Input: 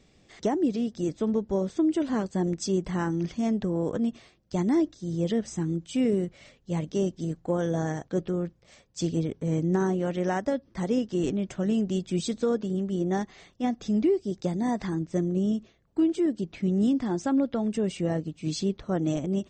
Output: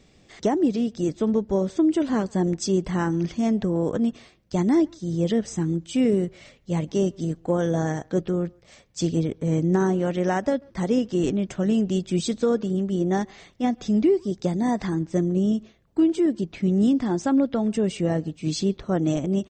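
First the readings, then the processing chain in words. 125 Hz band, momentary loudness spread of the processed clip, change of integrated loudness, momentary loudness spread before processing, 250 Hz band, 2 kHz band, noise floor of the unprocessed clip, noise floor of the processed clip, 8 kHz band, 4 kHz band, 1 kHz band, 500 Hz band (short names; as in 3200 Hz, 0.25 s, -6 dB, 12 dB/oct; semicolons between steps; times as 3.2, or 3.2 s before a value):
+4.0 dB, 6 LU, +4.0 dB, 6 LU, +4.0 dB, +4.0 dB, -62 dBFS, -56 dBFS, +4.0 dB, +4.0 dB, +4.0 dB, +4.0 dB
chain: speakerphone echo 0.14 s, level -27 dB; gain +4 dB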